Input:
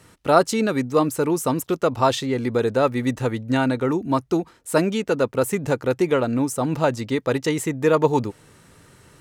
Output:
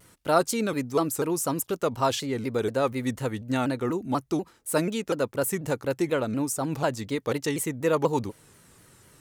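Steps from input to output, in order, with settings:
high-shelf EQ 7,600 Hz +11 dB
pitch modulation by a square or saw wave saw down 4.1 Hz, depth 160 cents
level −6 dB

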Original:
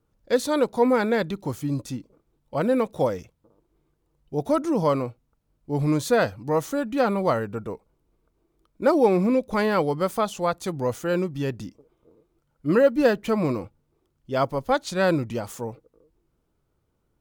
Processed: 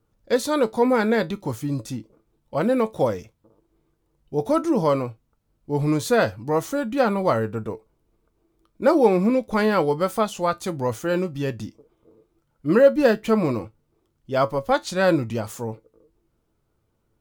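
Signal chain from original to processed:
tuned comb filter 110 Hz, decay 0.16 s, harmonics all, mix 60%
level +6 dB

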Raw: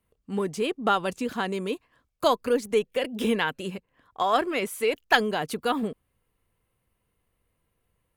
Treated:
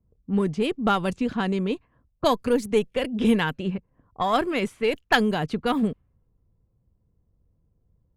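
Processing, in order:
harmonic generator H 8 −31 dB, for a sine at −4.5 dBFS
low-pass that shuts in the quiet parts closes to 630 Hz, open at −21.5 dBFS
bass and treble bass +11 dB, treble +1 dB

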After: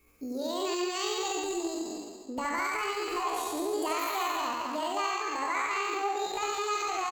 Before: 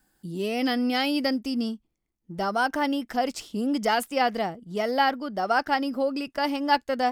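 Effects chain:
peak hold with a decay on every bin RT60 1.22 s
downward compressor 3 to 1, threshold −35 dBFS, peak gain reduction 15 dB
loudspeakers that aren't time-aligned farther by 24 metres −2 dB, 73 metres −5 dB
pitch shifter +6.5 semitones

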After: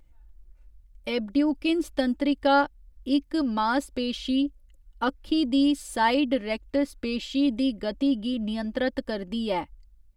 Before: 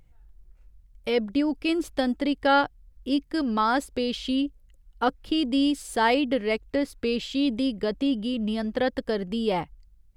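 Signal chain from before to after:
comb filter 3.4 ms, depth 57%
level −2.5 dB

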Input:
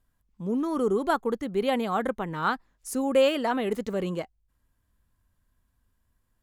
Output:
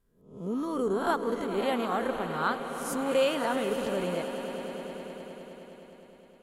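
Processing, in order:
peak hold with a rise ahead of every peak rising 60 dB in 0.53 s
echo that builds up and dies away 103 ms, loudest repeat 5, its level −14.5 dB
level −4.5 dB
MP3 64 kbit/s 44,100 Hz

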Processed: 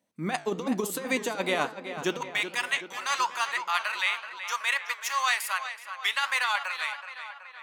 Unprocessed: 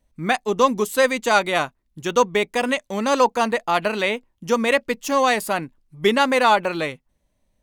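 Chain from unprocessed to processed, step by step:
high-pass filter 160 Hz 24 dB per octave, from 0:02.21 1,100 Hz
compressor whose output falls as the input rises −21 dBFS, ratio −0.5
flanger 1.1 Hz, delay 7.9 ms, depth 9.6 ms, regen −82%
tape delay 377 ms, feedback 62%, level −9.5 dB, low-pass 3,800 Hz

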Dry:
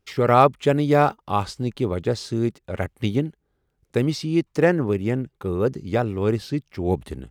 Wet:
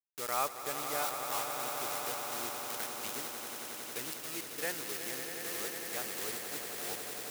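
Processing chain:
parametric band 3,700 Hz −8 dB 1 octave
centre clipping without the shift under −26 dBFS
first difference
on a send: echo that builds up and dies away 91 ms, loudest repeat 8, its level −10.5 dB

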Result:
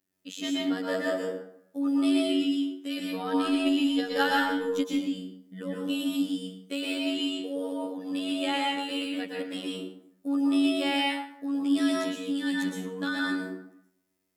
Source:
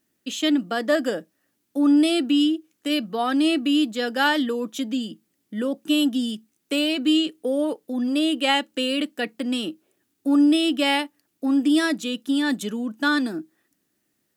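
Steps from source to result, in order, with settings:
0:03.30–0:04.92: transient designer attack +11 dB, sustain −10 dB
phases set to zero 93.2 Hz
dense smooth reverb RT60 0.72 s, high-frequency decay 0.6×, pre-delay 105 ms, DRR −4 dB
level −8.5 dB

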